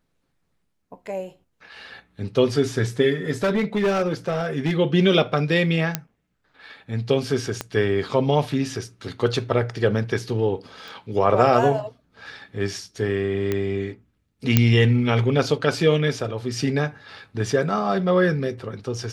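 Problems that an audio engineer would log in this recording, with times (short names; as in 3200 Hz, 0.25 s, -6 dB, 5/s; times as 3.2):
3.43–4.73 clipped -17 dBFS
5.95 pop -5 dBFS
7.61 pop -11 dBFS
10.88 pop
13.52 pop -11 dBFS
14.57 pop -1 dBFS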